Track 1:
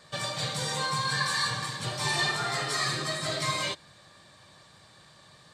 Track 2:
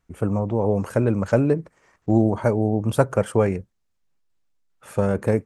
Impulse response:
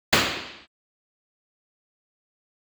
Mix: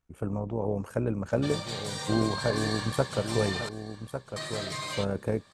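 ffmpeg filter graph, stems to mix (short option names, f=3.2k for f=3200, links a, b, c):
-filter_complex "[0:a]alimiter=limit=-21.5dB:level=0:latency=1:release=19,adelay=1300,volume=-4.5dB,asplit=3[a][b][c];[a]atrim=end=3.69,asetpts=PTS-STARTPTS,afade=t=out:st=3.686:d=0.004:c=hsin[d];[b]atrim=start=3.69:end=4.36,asetpts=PTS-STARTPTS,volume=0[e];[c]atrim=start=4.36,asetpts=PTS-STARTPTS,afade=t=in:d=0.004:c=hsin[f];[d][e][f]concat=n=3:v=0:a=1,asplit=2[g][h];[h]volume=-17.5dB[i];[1:a]bandreject=f=2k:w=16,tremolo=f=66:d=0.519,volume=-6.5dB,asplit=2[j][k];[k]volume=-9dB[l];[i][l]amix=inputs=2:normalize=0,aecho=0:1:1152:1[m];[g][j][m]amix=inputs=3:normalize=0"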